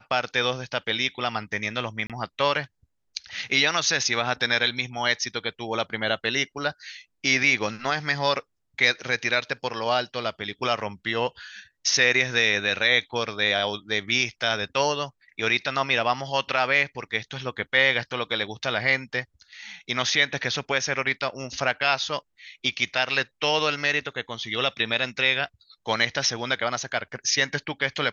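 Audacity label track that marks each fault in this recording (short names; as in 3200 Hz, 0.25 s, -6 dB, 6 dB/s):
2.070000	2.100000	gap 27 ms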